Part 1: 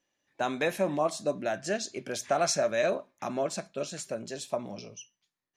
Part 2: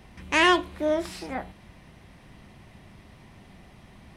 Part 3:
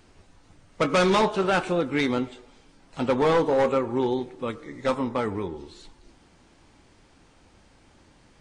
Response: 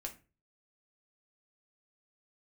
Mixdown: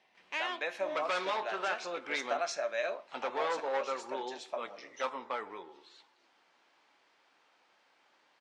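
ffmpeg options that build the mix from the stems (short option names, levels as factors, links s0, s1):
-filter_complex "[0:a]volume=0.531,asplit=2[s0][s1];[s1]volume=0.708[s2];[1:a]equalizer=f=1300:w=1.8:g=-7,volume=0.335[s3];[2:a]adelay=150,volume=0.531[s4];[3:a]atrim=start_sample=2205[s5];[s2][s5]afir=irnorm=-1:irlink=0[s6];[s0][s3][s4][s6]amix=inputs=4:normalize=0,highpass=730,lowpass=4200,alimiter=limit=0.0794:level=0:latency=1:release=341"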